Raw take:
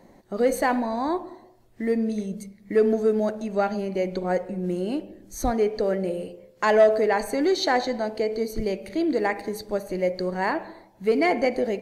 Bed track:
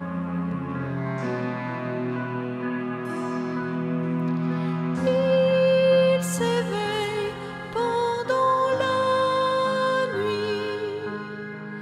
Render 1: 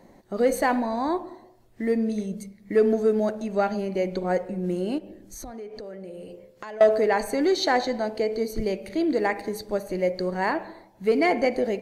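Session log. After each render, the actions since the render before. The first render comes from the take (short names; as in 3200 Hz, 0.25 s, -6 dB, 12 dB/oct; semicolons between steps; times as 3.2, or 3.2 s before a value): 4.98–6.81 compressor, threshold -36 dBFS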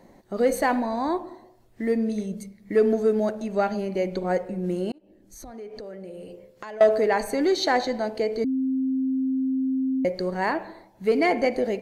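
4.92–5.68 fade in; 8.44–10.05 bleep 263 Hz -21.5 dBFS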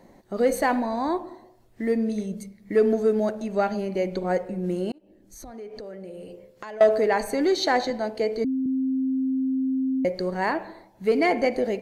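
7.9–8.66 three-band expander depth 40%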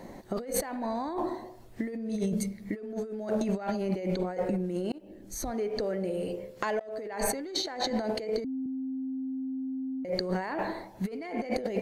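negative-ratio compressor -33 dBFS, ratio -1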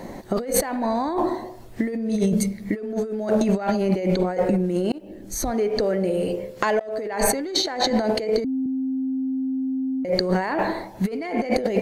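gain +9 dB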